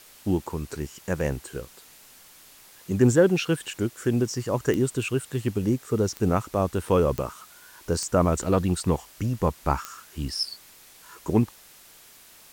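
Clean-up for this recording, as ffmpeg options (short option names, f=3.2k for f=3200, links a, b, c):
-af "adeclick=t=4,afwtdn=0.0032"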